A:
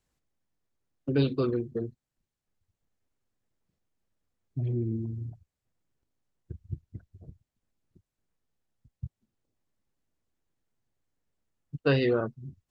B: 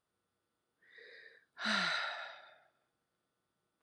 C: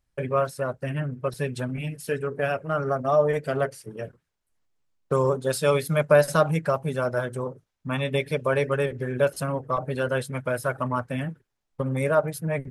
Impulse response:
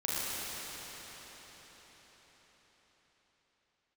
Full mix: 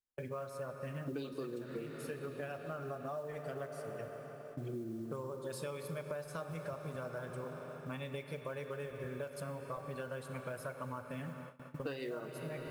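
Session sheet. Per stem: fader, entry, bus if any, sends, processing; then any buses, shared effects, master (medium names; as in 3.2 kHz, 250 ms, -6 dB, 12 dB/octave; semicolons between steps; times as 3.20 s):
0.0 dB, 0.00 s, send -17.5 dB, high-pass 250 Hz 12 dB/octave
-16.0 dB, 0.00 s, no send, Chebyshev low-pass 2 kHz
-13.0 dB, 0.00 s, send -13.5 dB, none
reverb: on, RT60 5.5 s, pre-delay 33 ms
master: modulation noise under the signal 28 dB; gate with hold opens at -39 dBFS; compression 12:1, threshold -38 dBFS, peak gain reduction 18.5 dB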